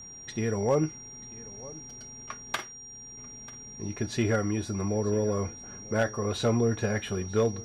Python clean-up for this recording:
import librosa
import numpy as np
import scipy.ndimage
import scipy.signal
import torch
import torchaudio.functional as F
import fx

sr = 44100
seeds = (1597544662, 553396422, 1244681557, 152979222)

y = fx.fix_declip(x, sr, threshold_db=-16.5)
y = fx.fix_declick_ar(y, sr, threshold=6.5)
y = fx.notch(y, sr, hz=5700.0, q=30.0)
y = fx.fix_echo_inverse(y, sr, delay_ms=940, level_db=-20.5)